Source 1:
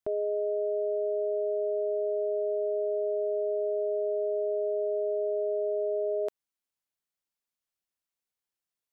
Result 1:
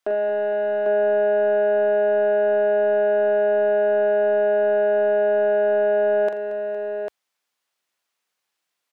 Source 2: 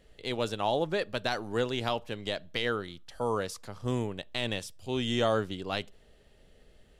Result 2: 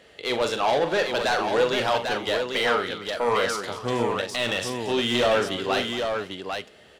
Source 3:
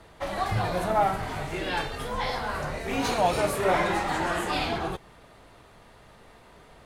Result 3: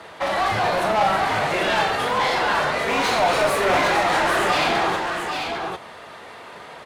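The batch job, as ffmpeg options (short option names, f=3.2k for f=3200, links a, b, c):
-filter_complex "[0:a]highpass=f=57:w=0.5412,highpass=f=57:w=1.3066,asplit=2[a][b];[b]highpass=f=720:p=1,volume=24dB,asoftclip=type=tanh:threshold=-10dB[c];[a][c]amix=inputs=2:normalize=0,lowpass=f=3.5k:p=1,volume=-6dB,aecho=1:1:42|83|229|461|797:0.398|0.133|0.168|0.141|0.562,volume=-3dB"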